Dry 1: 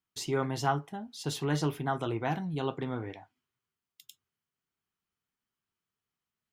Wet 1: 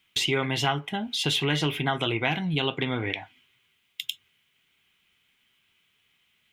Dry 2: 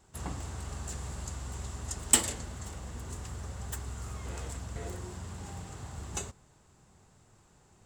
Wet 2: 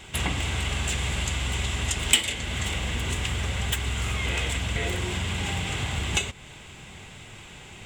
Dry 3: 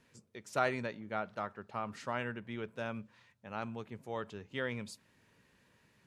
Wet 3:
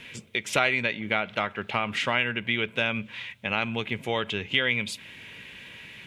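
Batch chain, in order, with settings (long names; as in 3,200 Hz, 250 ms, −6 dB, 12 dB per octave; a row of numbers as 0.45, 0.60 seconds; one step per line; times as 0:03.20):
flat-topped bell 2,500 Hz +15 dB 1.3 octaves
notch filter 1,800 Hz, Q 6.7
downward compressor 2.5 to 1, threshold −42 dBFS
loudness normalisation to −27 LKFS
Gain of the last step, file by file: +14.0, +15.5, +16.5 decibels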